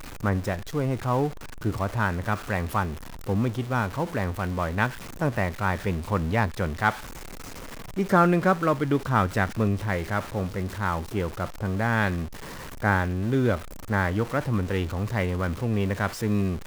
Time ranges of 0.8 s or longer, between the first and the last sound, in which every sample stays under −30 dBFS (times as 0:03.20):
0:06.91–0:07.97